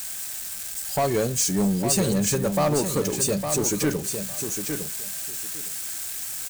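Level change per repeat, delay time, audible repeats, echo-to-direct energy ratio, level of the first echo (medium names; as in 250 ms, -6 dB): -16.0 dB, 858 ms, 2, -7.0 dB, -7.0 dB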